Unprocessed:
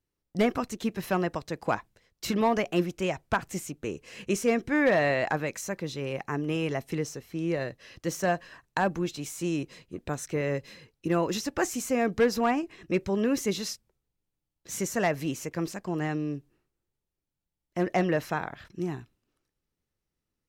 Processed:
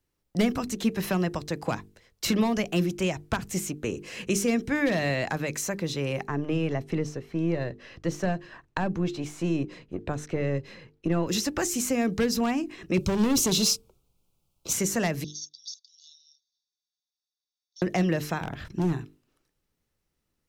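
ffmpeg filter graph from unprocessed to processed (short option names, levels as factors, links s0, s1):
-filter_complex "[0:a]asettb=1/sr,asplit=3[s0][s1][s2];[s0]atrim=end=6.274[s3];[s1]atrim=start=6.27:end=11.27,asetpts=PTS-STARTPTS,afade=t=in:d=0.004:c=qsin,afade=t=out:st=4.996:d=0.004:c=qsin,aeval=exprs='if(lt(val(0),0),0.708*val(0),val(0))':c=same,aemphasis=mode=reproduction:type=75fm[s4];[s2]atrim=start=11.266[s5];[s3][s4]acrossfade=d=0.004:c1=hsin:c2=qsin[s6];[s6][s5]acrossfade=d=0.004:c1=qsin:c2=hsin,asettb=1/sr,asplit=3[s7][s8][s9];[s7]atrim=end=12.974[s10];[s8]atrim=start=12.97:end=14.73,asetpts=PTS-STARTPTS,afade=t=in:d=0.004:c=qsin,afade=t=out:st=1.756:d=0.004:c=qsin,asuperstop=centerf=1800:order=4:qfactor=1.8,acontrast=68,asoftclip=type=hard:threshold=0.0708[s11];[s9]atrim=start=14.726[s12];[s10][s11]acrossfade=d=0.004:c1=hsin:c2=qsin[s13];[s13][s12]acrossfade=d=0.004:c1=qsin:c2=hsin,asettb=1/sr,asplit=3[s14][s15][s16];[s14]atrim=end=15.244[s17];[s15]atrim=start=15.24:end=17.82,asetpts=PTS-STARTPTS,afade=t=in:d=0.004:c=qsin,afade=t=out:st=2.576:d=0.004:c=qsin,asuperpass=centerf=4700:order=20:qfactor=1.5,aecho=1:1:1.1:0.79,atrim=end_sample=113778[s18];[s16]atrim=start=17.816[s19];[s17][s18]acrossfade=d=0.004:c1=hsin:c2=qsin[s20];[s20][s19]acrossfade=d=0.004:c1=qsin:c2=hsin,asettb=1/sr,asplit=3[s21][s22][s23];[s21]atrim=end=18.434[s24];[s22]atrim=start=18.43:end=18.93,asetpts=PTS-STARTPTS,afade=t=in:d=0.004:c=qsin,afade=t=out:st=0.496:d=0.004:c=qsin,lowshelf=f=290:g=8.5,asoftclip=type=hard:threshold=0.0562[s25];[s23]atrim=start=18.926[s26];[s24][s25]acrossfade=d=0.004:c1=hsin:c2=qsin[s27];[s27][s26]acrossfade=d=0.004:c1=qsin:c2=hsin,bandreject=f=50:t=h:w=6,bandreject=f=100:t=h:w=6,bandreject=f=150:t=h:w=6,bandreject=f=200:t=h:w=6,bandreject=f=250:t=h:w=6,bandreject=f=300:t=h:w=6,bandreject=f=350:t=h:w=6,bandreject=f=400:t=h:w=6,bandreject=f=450:t=h:w=6,acrossover=split=270|3000[s28][s29][s30];[s29]acompressor=threshold=0.0158:ratio=4[s31];[s28][s31][s30]amix=inputs=3:normalize=0,volume=2"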